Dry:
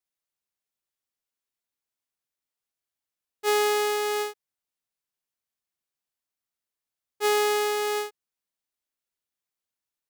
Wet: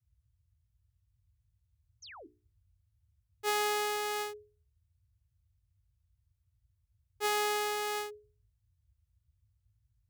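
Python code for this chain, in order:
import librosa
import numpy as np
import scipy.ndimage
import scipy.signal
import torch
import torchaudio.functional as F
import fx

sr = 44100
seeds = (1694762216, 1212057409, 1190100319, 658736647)

y = fx.spec_paint(x, sr, seeds[0], shape='fall', start_s=2.02, length_s=0.25, low_hz=260.0, high_hz=6900.0, level_db=-44.0)
y = fx.hum_notches(y, sr, base_hz=60, count=7)
y = fx.dmg_noise_band(y, sr, seeds[1], low_hz=46.0, high_hz=110.0, level_db=-67.0)
y = y * 10.0 ** (-5.5 / 20.0)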